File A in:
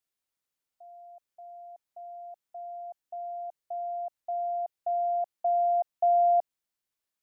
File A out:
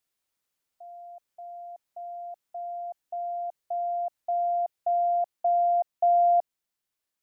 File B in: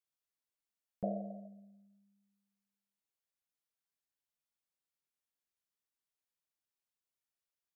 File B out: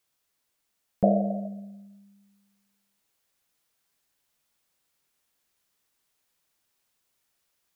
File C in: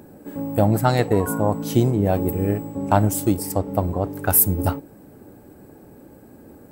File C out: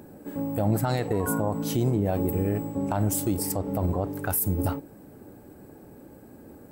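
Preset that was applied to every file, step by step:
in parallel at +1 dB: speech leveller within 3 dB 0.5 s
on the sum: brickwall limiter −7.5 dBFS
loudness normalisation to −27 LKFS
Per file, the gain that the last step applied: −3.5, +10.0, −8.0 decibels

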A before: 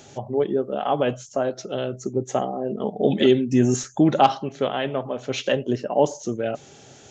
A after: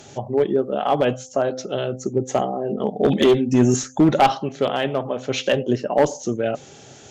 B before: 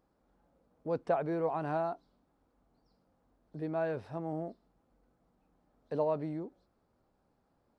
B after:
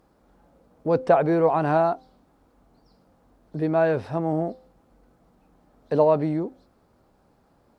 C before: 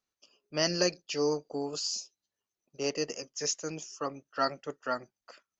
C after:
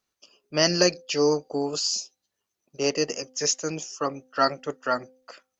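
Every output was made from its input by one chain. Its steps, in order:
asymmetric clip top −14 dBFS, bottom −10 dBFS
hum removal 257.9 Hz, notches 3
normalise the peak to −6 dBFS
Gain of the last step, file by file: +3.0, +12.5, +7.5 decibels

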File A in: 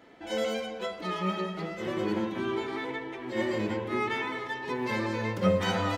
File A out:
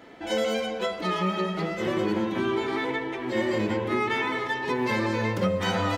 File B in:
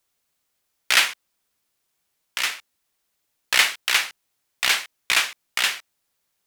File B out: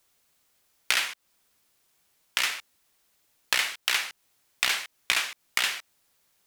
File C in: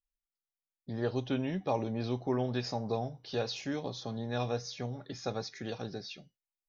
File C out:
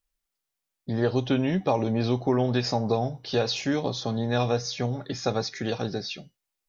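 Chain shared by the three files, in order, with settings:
downward compressor 8 to 1, threshold −28 dBFS
loudness normalisation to −27 LKFS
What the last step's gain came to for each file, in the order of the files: +6.5, +5.5, +10.0 decibels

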